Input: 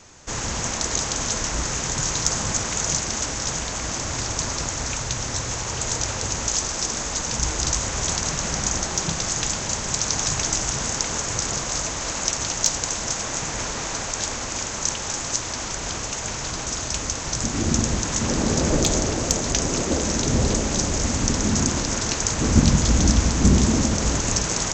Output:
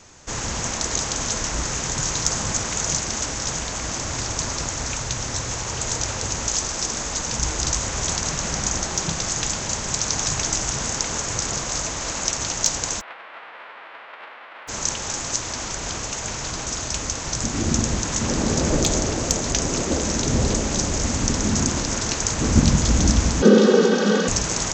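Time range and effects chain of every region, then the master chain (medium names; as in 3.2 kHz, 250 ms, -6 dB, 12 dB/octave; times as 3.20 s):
13.00–14.67 s: formants flattened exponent 0.1 + band-pass 760–2400 Hz + distance through air 490 m
23.42–24.28 s: comb 2.9 ms, depth 95% + frequency shift +150 Hz + cabinet simulation 190–4900 Hz, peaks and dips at 320 Hz +6 dB, 480 Hz +6 dB, 860 Hz -4 dB, 1.5 kHz +7 dB, 2.2 kHz -7 dB, 3.3 kHz +4 dB
whole clip: none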